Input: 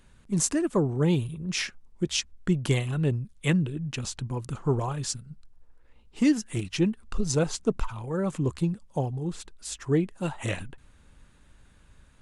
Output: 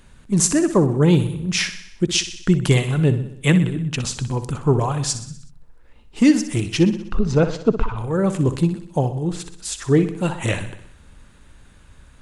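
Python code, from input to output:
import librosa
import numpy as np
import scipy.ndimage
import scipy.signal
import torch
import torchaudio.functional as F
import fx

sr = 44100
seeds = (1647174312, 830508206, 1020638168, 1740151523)

y = fx.lowpass(x, sr, hz=2700.0, slope=12, at=(6.83, 7.97))
y = fx.echo_feedback(y, sr, ms=62, feedback_pct=58, wet_db=-12.0)
y = F.gain(torch.from_numpy(y), 8.0).numpy()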